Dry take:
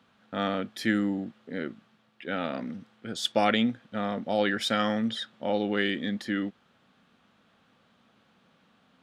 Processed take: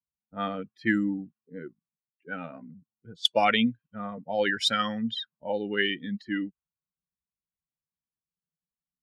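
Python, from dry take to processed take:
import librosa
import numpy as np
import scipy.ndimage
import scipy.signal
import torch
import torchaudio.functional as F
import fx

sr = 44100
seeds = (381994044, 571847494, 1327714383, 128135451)

y = fx.bin_expand(x, sr, power=2.0)
y = fx.env_lowpass(y, sr, base_hz=720.0, full_db=-27.5)
y = fx.tilt_shelf(y, sr, db=-3.0, hz=1300.0)
y = F.gain(torch.from_numpy(y), 5.5).numpy()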